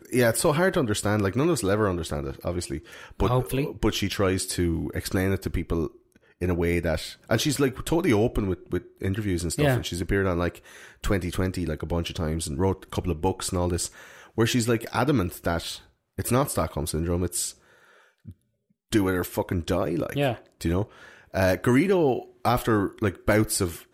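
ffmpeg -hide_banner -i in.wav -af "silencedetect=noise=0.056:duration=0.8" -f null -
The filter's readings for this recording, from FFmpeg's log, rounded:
silence_start: 17.49
silence_end: 18.93 | silence_duration: 1.44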